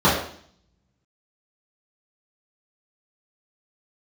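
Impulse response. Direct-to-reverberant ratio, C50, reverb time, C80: −11.0 dB, 3.5 dB, 0.55 s, 7.5 dB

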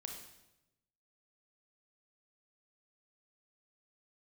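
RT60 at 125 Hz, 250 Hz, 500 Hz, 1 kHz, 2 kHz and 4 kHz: 1.3, 1.1, 1.0, 0.85, 0.85, 0.80 seconds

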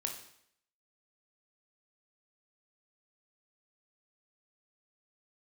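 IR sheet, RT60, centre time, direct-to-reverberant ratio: 0.70 s, 24 ms, 2.5 dB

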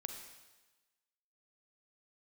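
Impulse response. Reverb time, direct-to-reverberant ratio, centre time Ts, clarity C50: 1.2 s, 4.5 dB, 33 ms, 5.5 dB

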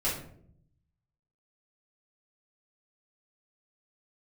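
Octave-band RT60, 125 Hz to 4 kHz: 1.3, 1.0, 0.75, 0.55, 0.45, 0.35 seconds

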